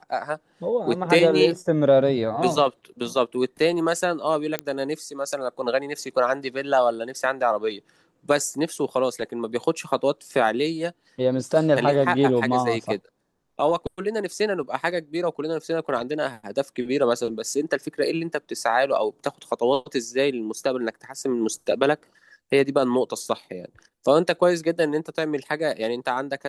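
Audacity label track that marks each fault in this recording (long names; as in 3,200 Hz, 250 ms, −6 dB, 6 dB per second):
4.590000	4.590000	click −10 dBFS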